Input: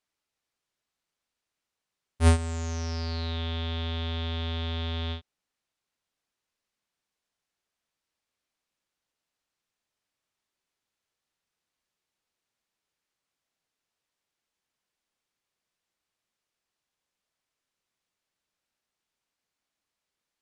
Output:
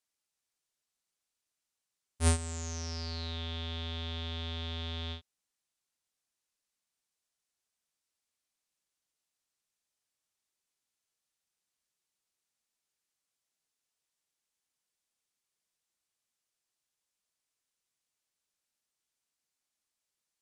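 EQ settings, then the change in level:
parametric band 9,100 Hz +11 dB 1.9 octaves
−7.5 dB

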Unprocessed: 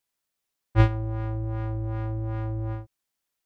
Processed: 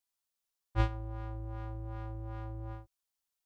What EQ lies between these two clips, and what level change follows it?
octave-band graphic EQ 125/250/500/2,000 Hz −9/−7/−5/−6 dB
−4.5 dB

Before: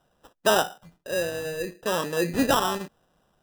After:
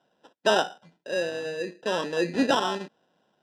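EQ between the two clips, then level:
Chebyshev band-pass filter 230–4,600 Hz, order 2
Butterworth band-reject 1,200 Hz, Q 6.9
0.0 dB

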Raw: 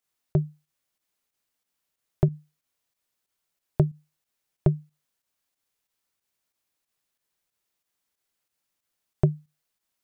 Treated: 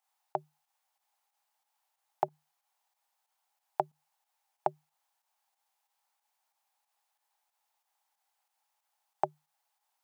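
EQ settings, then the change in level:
high-pass with resonance 820 Hz, resonance Q 7.8
−1.5 dB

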